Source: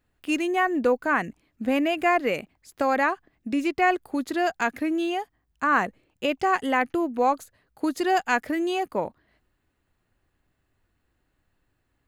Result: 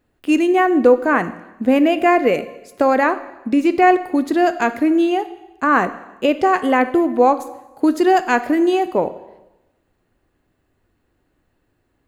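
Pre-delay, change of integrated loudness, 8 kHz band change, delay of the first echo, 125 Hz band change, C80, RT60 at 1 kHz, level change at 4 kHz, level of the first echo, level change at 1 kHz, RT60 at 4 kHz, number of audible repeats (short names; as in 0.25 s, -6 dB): 6 ms, +8.5 dB, n/a, none, n/a, 16.5 dB, 1.0 s, +3.5 dB, none, +7.5 dB, 0.95 s, none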